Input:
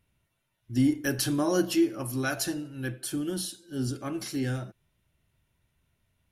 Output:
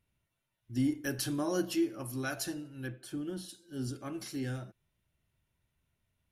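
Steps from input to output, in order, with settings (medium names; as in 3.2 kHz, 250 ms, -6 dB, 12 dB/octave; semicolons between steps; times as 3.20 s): 2.86–3.48 s: treble shelf 5 kHz -> 3.4 kHz -10.5 dB; trim -6.5 dB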